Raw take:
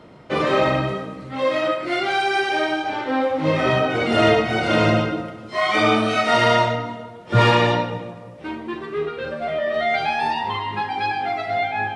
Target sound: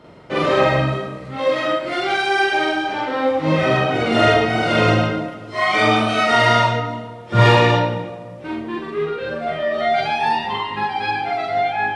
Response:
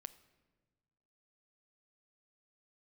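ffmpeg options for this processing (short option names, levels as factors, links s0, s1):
-filter_complex "[0:a]asplit=2[s0][s1];[1:a]atrim=start_sample=2205,adelay=44[s2];[s1][s2]afir=irnorm=-1:irlink=0,volume=2.24[s3];[s0][s3]amix=inputs=2:normalize=0,volume=0.841"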